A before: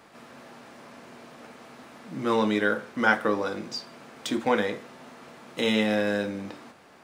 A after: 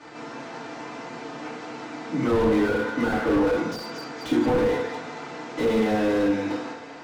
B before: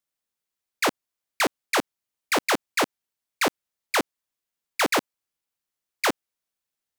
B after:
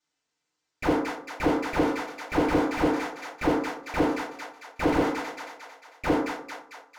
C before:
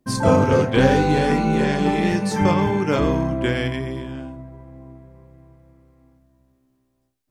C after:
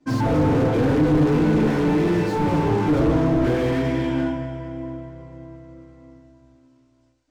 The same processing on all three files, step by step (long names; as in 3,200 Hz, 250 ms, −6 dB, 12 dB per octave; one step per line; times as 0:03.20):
Butterworth low-pass 7,500 Hz 36 dB per octave
low-shelf EQ 130 Hz −7 dB
hum removal 90.39 Hz, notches 15
downward compressor 1.5 to 1, threshold −30 dBFS
soft clipping −22.5 dBFS
echo with a time of its own for lows and highs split 560 Hz, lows 98 ms, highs 224 ms, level −13 dB
feedback delay network reverb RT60 0.41 s, low-frequency decay 1×, high-frequency decay 0.65×, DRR −10 dB
slew-rate limiting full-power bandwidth 56 Hz